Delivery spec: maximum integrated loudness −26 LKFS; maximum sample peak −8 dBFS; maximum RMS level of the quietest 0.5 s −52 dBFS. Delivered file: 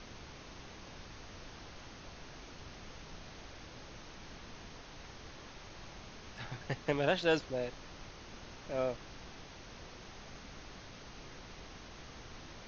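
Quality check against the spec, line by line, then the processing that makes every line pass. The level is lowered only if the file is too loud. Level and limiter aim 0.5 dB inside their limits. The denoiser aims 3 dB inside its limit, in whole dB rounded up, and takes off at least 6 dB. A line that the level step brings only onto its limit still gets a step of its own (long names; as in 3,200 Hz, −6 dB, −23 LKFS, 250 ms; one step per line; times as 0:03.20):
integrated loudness −42.5 LKFS: in spec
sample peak −16.0 dBFS: in spec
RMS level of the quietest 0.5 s −51 dBFS: out of spec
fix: broadband denoise 6 dB, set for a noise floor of −51 dBFS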